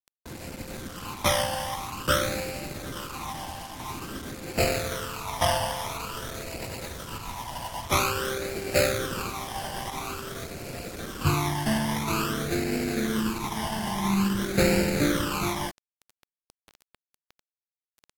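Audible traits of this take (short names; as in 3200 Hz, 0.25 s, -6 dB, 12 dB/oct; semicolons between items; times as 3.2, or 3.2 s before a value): aliases and images of a low sample rate 1900 Hz, jitter 20%; phasing stages 12, 0.49 Hz, lowest notch 410–1100 Hz; a quantiser's noise floor 8-bit, dither none; AAC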